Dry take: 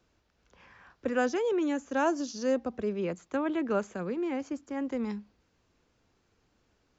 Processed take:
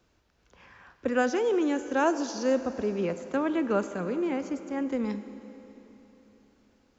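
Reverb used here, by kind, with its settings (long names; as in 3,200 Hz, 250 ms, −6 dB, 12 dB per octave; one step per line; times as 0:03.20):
four-comb reverb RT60 3.7 s, combs from 33 ms, DRR 11 dB
level +2.5 dB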